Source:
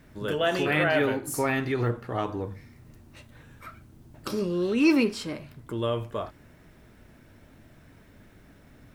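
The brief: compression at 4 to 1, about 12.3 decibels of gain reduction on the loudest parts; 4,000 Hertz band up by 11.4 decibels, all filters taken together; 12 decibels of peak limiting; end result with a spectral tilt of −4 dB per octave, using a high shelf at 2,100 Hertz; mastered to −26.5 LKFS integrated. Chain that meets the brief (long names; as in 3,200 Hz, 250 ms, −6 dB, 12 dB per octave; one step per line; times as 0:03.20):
high-shelf EQ 2,100 Hz +8.5 dB
parametric band 4,000 Hz +7 dB
downward compressor 4 to 1, threshold −28 dBFS
level +9.5 dB
brickwall limiter −16 dBFS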